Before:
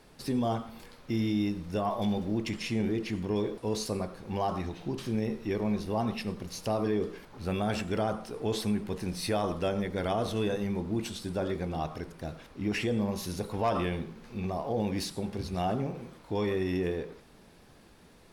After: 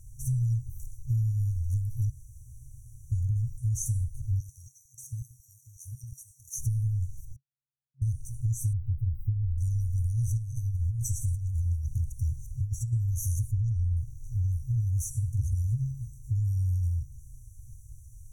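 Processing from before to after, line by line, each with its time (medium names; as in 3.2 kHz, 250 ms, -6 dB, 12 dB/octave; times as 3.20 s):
2.10–3.12 s: room tone
4.40–6.59 s: step-sequenced high-pass 11 Hz 260–3000 Hz
7.36–8.02 s: bleep 938 Hz -19 dBFS
8.73–9.58 s: inverse Chebyshev band-stop 1.1–9.3 kHz, stop band 60 dB
10.37–12.93 s: compressor with a negative ratio -35 dBFS
13.51–13.97 s: low-pass 4.9 kHz
whole clip: FFT band-reject 130–5700 Hz; bass shelf 230 Hz +9.5 dB; compression, threshold -32 dBFS; trim +8 dB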